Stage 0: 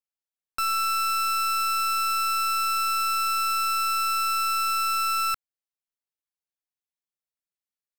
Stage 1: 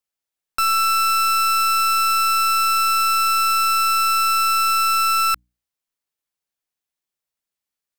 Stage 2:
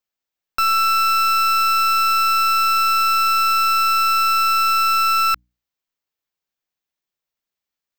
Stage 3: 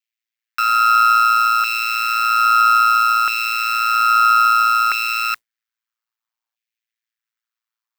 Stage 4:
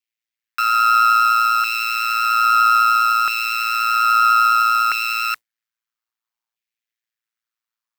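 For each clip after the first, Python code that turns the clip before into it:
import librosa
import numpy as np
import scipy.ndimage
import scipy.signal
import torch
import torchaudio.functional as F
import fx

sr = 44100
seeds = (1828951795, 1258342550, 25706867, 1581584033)

y1 = fx.hum_notches(x, sr, base_hz=60, count=5)
y1 = y1 * librosa.db_to_amplitude(7.0)
y2 = fx.peak_eq(y1, sr, hz=10000.0, db=-13.0, octaves=0.53)
y2 = y2 * librosa.db_to_amplitude(1.5)
y3 = fx.filter_lfo_highpass(y2, sr, shape='saw_down', hz=0.61, low_hz=870.0, high_hz=2400.0, q=2.5)
y3 = fx.mod_noise(y3, sr, seeds[0], snr_db=31)
y3 = y3 * np.sin(2.0 * np.pi * 57.0 * np.arange(len(y3)) / sr)
y4 = fx.vibrato(y3, sr, rate_hz=10.0, depth_cents=12.0)
y4 = y4 * librosa.db_to_amplitude(-1.0)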